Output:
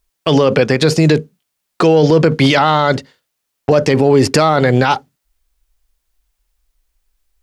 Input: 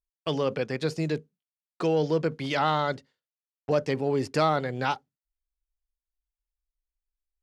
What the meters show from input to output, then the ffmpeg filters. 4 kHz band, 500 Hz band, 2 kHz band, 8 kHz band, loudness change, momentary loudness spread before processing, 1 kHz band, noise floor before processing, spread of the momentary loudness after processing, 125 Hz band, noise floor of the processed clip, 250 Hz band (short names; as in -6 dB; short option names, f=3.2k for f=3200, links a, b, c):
+16.0 dB, +14.5 dB, +15.0 dB, +20.5 dB, +15.0 dB, 7 LU, +12.5 dB, under -85 dBFS, 6 LU, +17.0 dB, -74 dBFS, +16.5 dB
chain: -af "alimiter=level_in=23.5dB:limit=-1dB:release=50:level=0:latency=1,volume=-1dB"